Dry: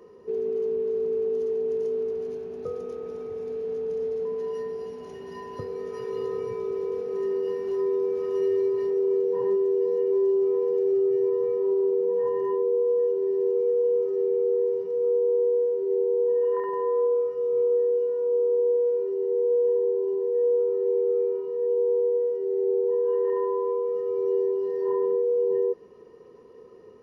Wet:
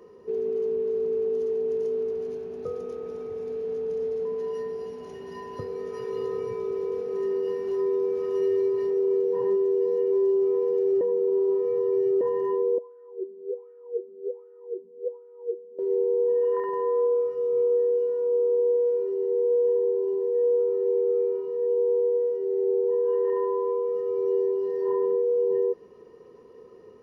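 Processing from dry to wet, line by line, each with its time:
11.01–12.21 s: reverse
12.78–15.79 s: wah-wah 1.3 Hz 220–1500 Hz, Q 8.3

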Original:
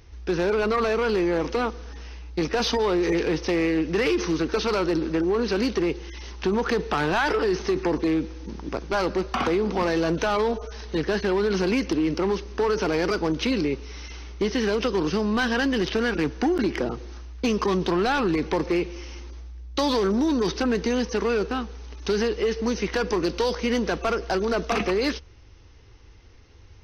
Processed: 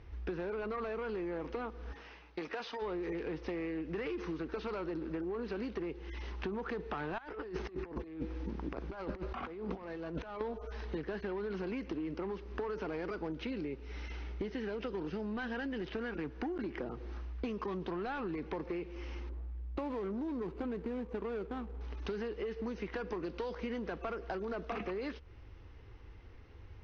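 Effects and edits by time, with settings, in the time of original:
1.92–2.81 s: high-pass 460 Hz -> 1 kHz 6 dB/octave
7.18–10.41 s: compressor with a negative ratio -30 dBFS, ratio -0.5
13.23–15.89 s: band-stop 1.1 kHz, Q 7.4
19.29–21.81 s: median filter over 25 samples
whole clip: compression 6:1, threshold -34 dBFS; low-pass 2.5 kHz 12 dB/octave; trim -2.5 dB

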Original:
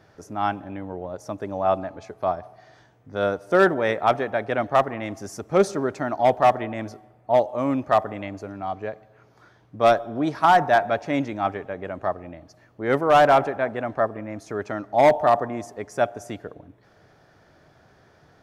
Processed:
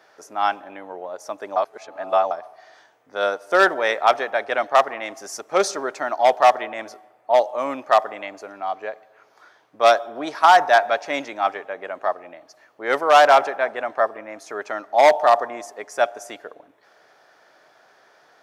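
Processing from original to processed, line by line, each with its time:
1.56–2.31 s: reverse
whole clip: high-pass 590 Hz 12 dB/octave; dynamic bell 5.2 kHz, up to +6 dB, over -44 dBFS, Q 1.1; trim +4.5 dB

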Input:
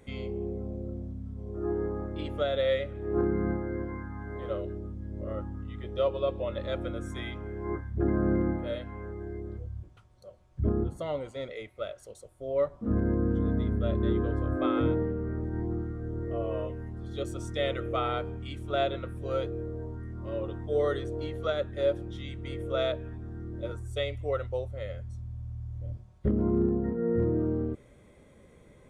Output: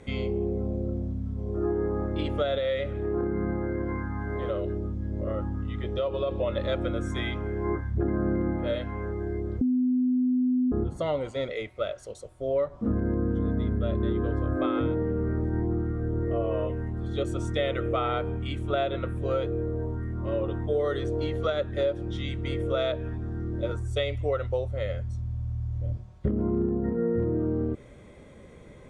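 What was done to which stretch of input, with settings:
2.58–6.31 s: compression 2.5:1, threshold -32 dBFS
9.61–10.72 s: bleep 252 Hz -21.5 dBFS
15.51–20.85 s: peaking EQ 5.2 kHz -6.5 dB 0.76 oct
whole clip: low-pass 7.7 kHz 12 dB/octave; compression, threshold -30 dBFS; trim +7 dB

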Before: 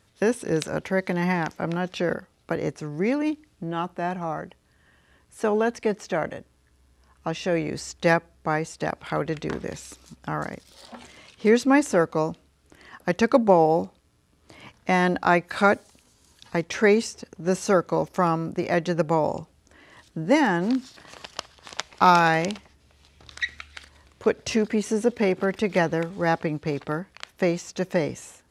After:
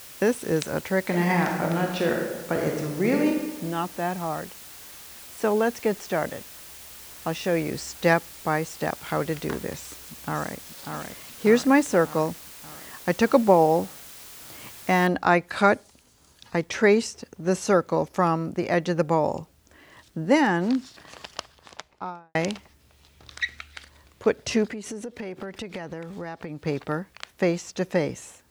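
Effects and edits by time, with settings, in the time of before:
1.01–3.29 s: reverb throw, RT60 1.2 s, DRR 1 dB
9.73–10.54 s: echo throw 590 ms, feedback 65%, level -6 dB
15.07 s: noise floor step -44 dB -68 dB
21.29–22.35 s: studio fade out
24.69–26.62 s: compression 8:1, threshold -31 dBFS

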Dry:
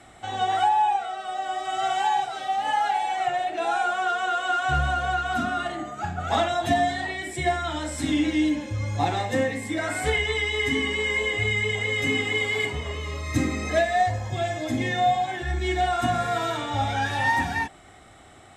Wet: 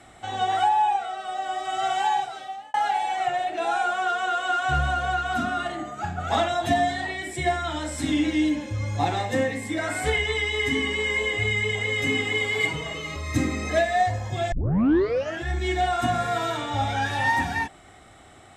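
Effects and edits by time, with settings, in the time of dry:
2.13–2.74 s: fade out
12.60–13.16 s: comb 6.2 ms, depth 87%
14.52 s: tape start 0.93 s

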